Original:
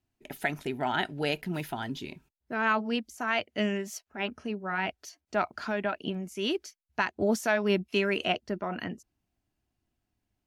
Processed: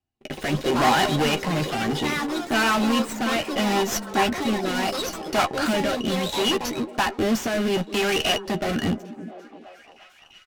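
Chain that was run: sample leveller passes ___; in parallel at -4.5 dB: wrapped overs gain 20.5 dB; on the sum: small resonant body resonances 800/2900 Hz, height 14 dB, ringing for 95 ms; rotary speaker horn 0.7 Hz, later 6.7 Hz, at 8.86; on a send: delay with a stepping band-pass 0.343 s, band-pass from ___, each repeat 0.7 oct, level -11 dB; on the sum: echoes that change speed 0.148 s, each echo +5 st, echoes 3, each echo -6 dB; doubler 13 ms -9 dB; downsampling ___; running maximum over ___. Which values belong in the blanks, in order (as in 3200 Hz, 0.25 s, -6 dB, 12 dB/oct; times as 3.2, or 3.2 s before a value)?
3, 250 Hz, 22050 Hz, 3 samples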